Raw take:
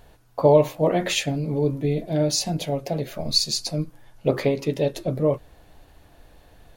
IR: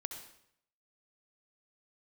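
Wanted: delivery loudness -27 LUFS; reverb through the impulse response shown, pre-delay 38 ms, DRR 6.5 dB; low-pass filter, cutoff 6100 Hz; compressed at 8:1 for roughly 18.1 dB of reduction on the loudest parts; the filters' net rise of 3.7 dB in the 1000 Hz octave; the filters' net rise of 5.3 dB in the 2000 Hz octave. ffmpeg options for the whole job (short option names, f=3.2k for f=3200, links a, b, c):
-filter_complex "[0:a]lowpass=6.1k,equalizer=f=1k:t=o:g=4,equalizer=f=2k:t=o:g=6,acompressor=threshold=-29dB:ratio=8,asplit=2[a][b];[1:a]atrim=start_sample=2205,adelay=38[c];[b][c]afir=irnorm=-1:irlink=0,volume=-5dB[d];[a][d]amix=inputs=2:normalize=0,volume=5.5dB"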